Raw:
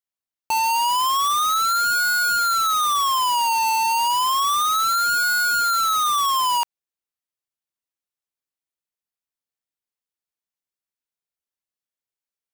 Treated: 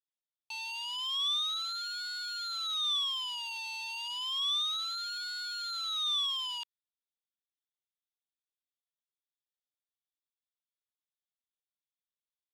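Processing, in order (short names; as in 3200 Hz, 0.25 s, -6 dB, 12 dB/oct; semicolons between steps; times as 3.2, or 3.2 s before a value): band-pass 3500 Hz, Q 6.7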